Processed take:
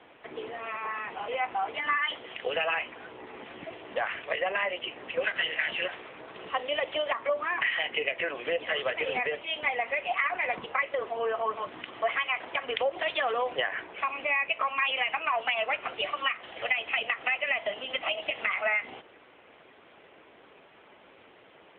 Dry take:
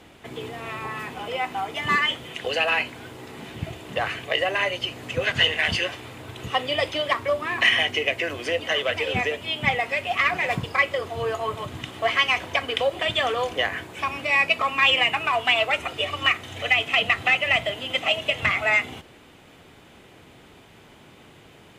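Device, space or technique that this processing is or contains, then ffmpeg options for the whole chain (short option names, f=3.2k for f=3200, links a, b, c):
voicemail: -filter_complex "[0:a]asplit=3[a][b][c];[a]afade=t=out:st=13.25:d=0.02[d];[b]bandreject=f=50:t=h:w=6,bandreject=f=100:t=h:w=6,bandreject=f=150:t=h:w=6,afade=t=in:st=13.25:d=0.02,afade=t=out:st=14.2:d=0.02[e];[c]afade=t=in:st=14.2:d=0.02[f];[d][e][f]amix=inputs=3:normalize=0,highpass=390,lowpass=2.8k,acompressor=threshold=-23dB:ratio=6" -ar 8000 -c:a libopencore_amrnb -b:a 7950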